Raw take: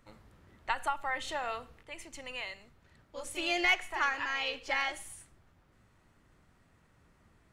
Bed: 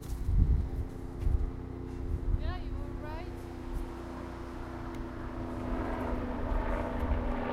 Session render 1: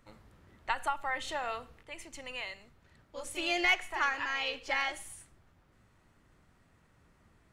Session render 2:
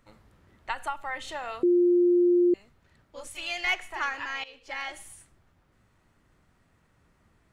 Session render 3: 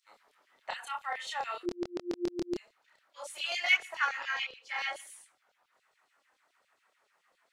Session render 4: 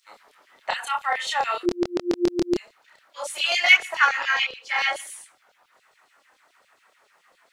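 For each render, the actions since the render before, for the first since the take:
nothing audible
1.63–2.54 bleep 352 Hz -17.5 dBFS; 3.27–3.67 bell 380 Hz -15 dB 1.1 oct; 4.44–5.01 fade in, from -17 dB
LFO high-pass saw down 7.1 Hz 490–5100 Hz; chorus voices 2, 0.52 Hz, delay 27 ms, depth 4.1 ms
gain +11.5 dB; limiter -3 dBFS, peak gain reduction 2 dB

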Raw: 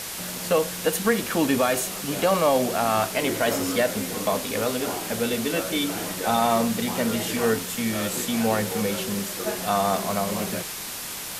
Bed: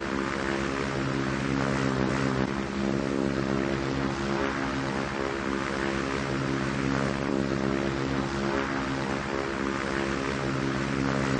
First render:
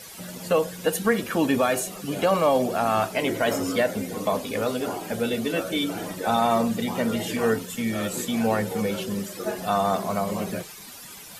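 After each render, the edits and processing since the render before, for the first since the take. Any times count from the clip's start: denoiser 13 dB, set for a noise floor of -34 dBFS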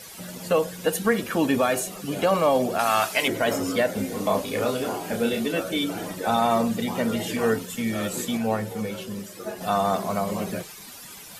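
2.79–3.28 tilt shelf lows -8 dB, about 780 Hz; 3.93–5.46 doubler 30 ms -4.5 dB; 8.37–9.61 resonator 110 Hz, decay 0.18 s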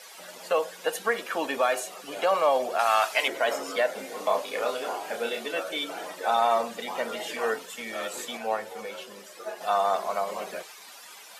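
Chebyshev high-pass 660 Hz, order 2; high shelf 8500 Hz -10.5 dB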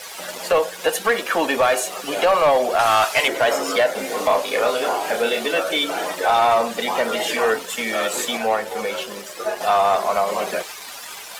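in parallel at -1.5 dB: compressor, threshold -34 dBFS, peak gain reduction 15 dB; on the sum: sample leveller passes 2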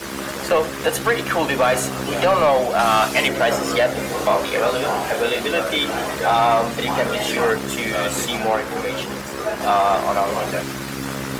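add bed -1 dB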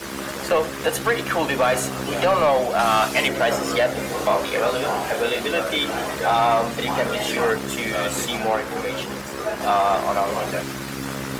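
gain -2 dB

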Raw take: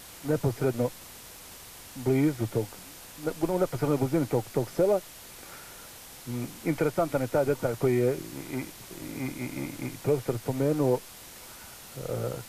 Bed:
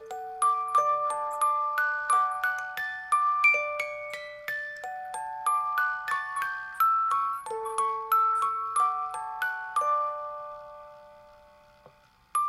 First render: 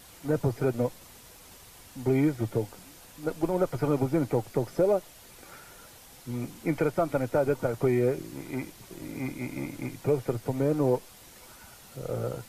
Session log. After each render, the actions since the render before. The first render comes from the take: denoiser 6 dB, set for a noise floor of -47 dBFS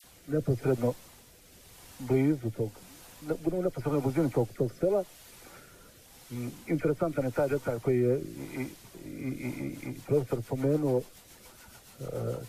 rotary speaker horn 0.9 Hz, later 7 Hz, at 9.25; dispersion lows, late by 40 ms, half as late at 1400 Hz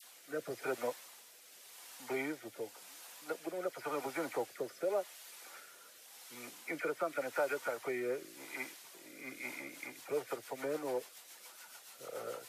Bessel high-pass 850 Hz, order 2; dynamic EQ 1800 Hz, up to +4 dB, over -54 dBFS, Q 1.4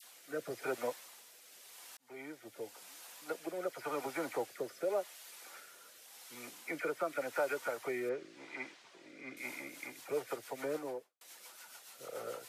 1.97–2.76 fade in; 8.09–9.37 air absorption 130 m; 10.71–11.21 studio fade out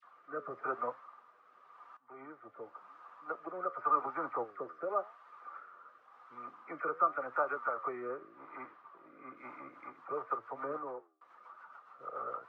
flange 0.94 Hz, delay 6.3 ms, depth 6.7 ms, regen +83%; synth low-pass 1200 Hz, resonance Q 12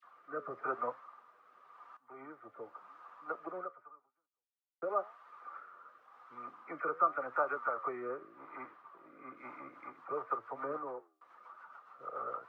3.58–4.82 fade out exponential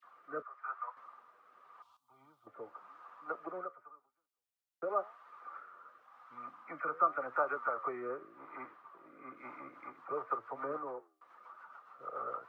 0.42–0.97 ladder high-pass 860 Hz, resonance 35%; 1.82–2.47 EQ curve 100 Hz 0 dB, 410 Hz -21 dB, 990 Hz -7 dB, 1800 Hz -24 dB, 3400 Hz +5 dB; 6.02–6.94 bell 400 Hz -13 dB 0.36 oct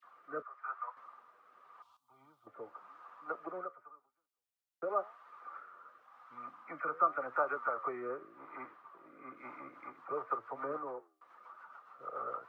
nothing audible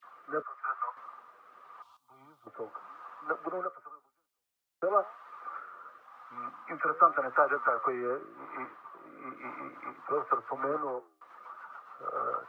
gain +7 dB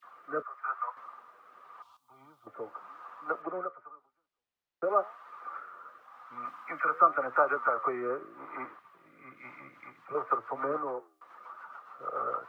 3.42–4.84 air absorption 180 m; 6.45–7 tilt shelf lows -5 dB, about 900 Hz; 8.79–10.15 band shelf 600 Hz -10 dB 2.9 oct

